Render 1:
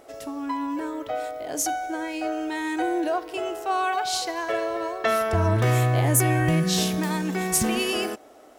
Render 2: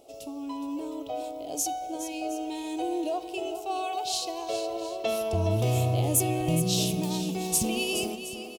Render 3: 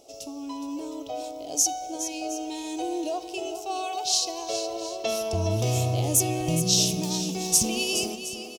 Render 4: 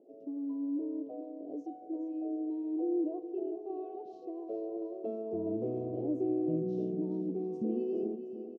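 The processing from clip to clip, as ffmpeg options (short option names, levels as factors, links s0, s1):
-filter_complex "[0:a]firequalizer=gain_entry='entry(720,0);entry(1700,-24);entry(2600,2)':delay=0.05:min_phase=1,asplit=2[s0][s1];[s1]aecho=0:1:417|716:0.299|0.15[s2];[s0][s2]amix=inputs=2:normalize=0,volume=0.596"
-af "equalizer=f=5800:w=1.7:g=11.5"
-af "asuperpass=centerf=320:order=4:qfactor=1.4"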